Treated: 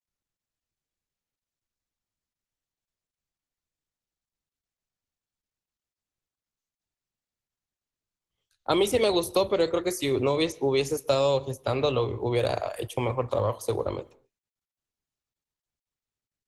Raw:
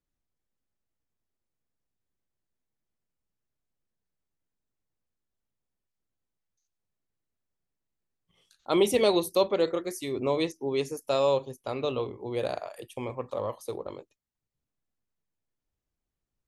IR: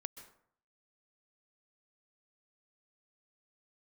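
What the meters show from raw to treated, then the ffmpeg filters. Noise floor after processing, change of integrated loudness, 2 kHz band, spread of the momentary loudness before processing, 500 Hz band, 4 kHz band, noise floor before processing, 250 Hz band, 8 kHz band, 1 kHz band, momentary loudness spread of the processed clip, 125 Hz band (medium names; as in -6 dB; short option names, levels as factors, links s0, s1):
under -85 dBFS, +2.5 dB, +3.5 dB, 14 LU, +2.0 dB, +3.5 dB, under -85 dBFS, +2.0 dB, +3.5 dB, +3.0 dB, 7 LU, +8.5 dB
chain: -filter_complex "[0:a]agate=range=0.0224:threshold=0.00251:ratio=3:detection=peak,lowshelf=f=130:t=q:w=1.5:g=9.5,acrossover=split=83|360|4100[s0][s1][s2][s3];[s0]acompressor=threshold=0.00141:ratio=4[s4];[s1]acompressor=threshold=0.00891:ratio=4[s5];[s2]acompressor=threshold=0.02:ratio=4[s6];[s3]acompressor=threshold=0.00794:ratio=4[s7];[s4][s5][s6][s7]amix=inputs=4:normalize=0,asplit=2[s8][s9];[1:a]atrim=start_sample=2205,afade=t=out:st=0.31:d=0.01,atrim=end_sample=14112[s10];[s9][s10]afir=irnorm=-1:irlink=0,volume=0.316[s11];[s8][s11]amix=inputs=2:normalize=0,volume=2.66" -ar 48000 -c:a libopus -b:a 16k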